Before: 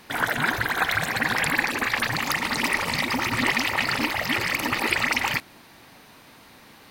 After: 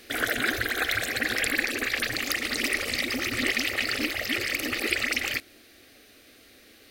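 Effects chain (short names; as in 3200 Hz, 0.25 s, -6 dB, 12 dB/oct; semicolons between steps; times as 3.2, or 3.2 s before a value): fixed phaser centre 390 Hz, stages 4; vocal rider 2 s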